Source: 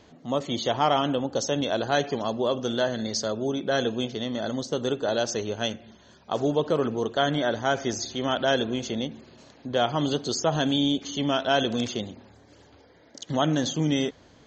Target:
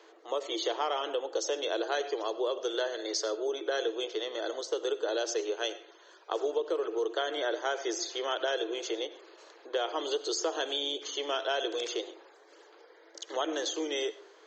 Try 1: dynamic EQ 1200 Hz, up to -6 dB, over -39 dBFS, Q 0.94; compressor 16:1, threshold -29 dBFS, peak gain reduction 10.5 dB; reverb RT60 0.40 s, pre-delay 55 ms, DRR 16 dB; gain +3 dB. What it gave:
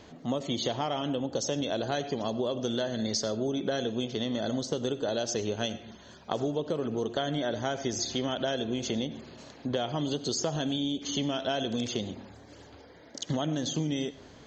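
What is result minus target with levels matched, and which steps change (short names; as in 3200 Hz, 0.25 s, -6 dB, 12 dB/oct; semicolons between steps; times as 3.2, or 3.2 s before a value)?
250 Hz band +8.0 dB
add after dynamic EQ: rippled Chebyshev high-pass 320 Hz, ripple 6 dB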